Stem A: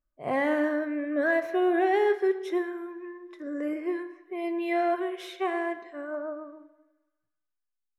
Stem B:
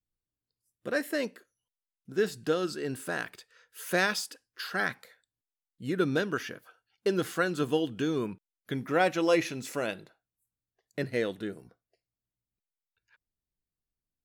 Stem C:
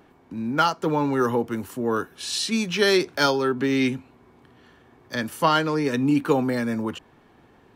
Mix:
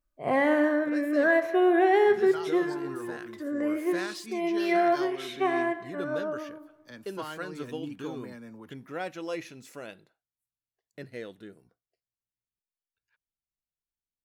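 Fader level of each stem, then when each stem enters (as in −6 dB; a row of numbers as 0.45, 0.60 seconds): +2.5, −10.0, −19.5 decibels; 0.00, 0.00, 1.75 seconds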